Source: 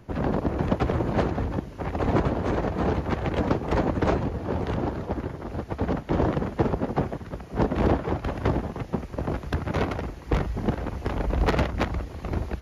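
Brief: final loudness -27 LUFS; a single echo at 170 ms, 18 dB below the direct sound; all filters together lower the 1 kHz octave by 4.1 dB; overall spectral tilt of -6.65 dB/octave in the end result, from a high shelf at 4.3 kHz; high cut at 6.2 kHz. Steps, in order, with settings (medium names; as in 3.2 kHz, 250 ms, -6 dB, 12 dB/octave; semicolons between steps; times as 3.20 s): low-pass 6.2 kHz; peaking EQ 1 kHz -6 dB; treble shelf 4.3 kHz +8.5 dB; delay 170 ms -18 dB; trim +1 dB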